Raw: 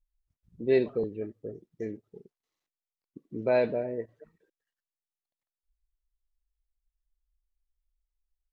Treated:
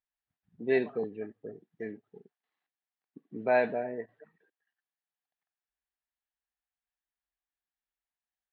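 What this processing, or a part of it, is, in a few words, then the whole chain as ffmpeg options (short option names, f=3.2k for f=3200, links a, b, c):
kitchen radio: -af "highpass=190,equalizer=f=340:t=q:w=4:g=-6,equalizer=f=540:t=q:w=4:g=-7,equalizer=f=760:t=q:w=4:g=8,equalizer=f=1.7k:t=q:w=4:g=8,lowpass=f=3.7k:w=0.5412,lowpass=f=3.7k:w=1.3066"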